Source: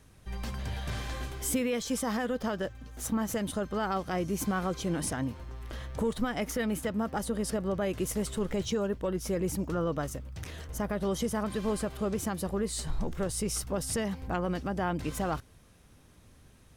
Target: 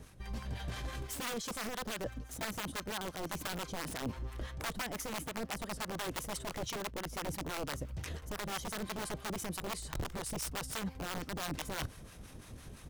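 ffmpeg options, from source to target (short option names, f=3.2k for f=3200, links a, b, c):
-filter_complex "[0:a]atempo=1.3,aeval=exprs='(mod(17.8*val(0)+1,2)-1)/17.8':c=same,areverse,acompressor=threshold=-46dB:ratio=6,areverse,acrossover=split=720[a][b];[a]aeval=exprs='val(0)*(1-0.7/2+0.7/2*cos(2*PI*5.9*n/s))':c=same[c];[b]aeval=exprs='val(0)*(1-0.7/2-0.7/2*cos(2*PI*5.9*n/s))':c=same[d];[c][d]amix=inputs=2:normalize=0,volume=11dB"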